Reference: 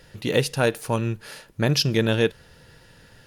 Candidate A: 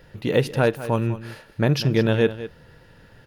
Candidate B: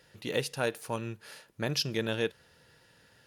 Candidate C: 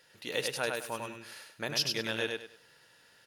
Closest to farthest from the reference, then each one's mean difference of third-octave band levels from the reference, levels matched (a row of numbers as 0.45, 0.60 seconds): B, A, C; 2.0, 4.0, 7.5 decibels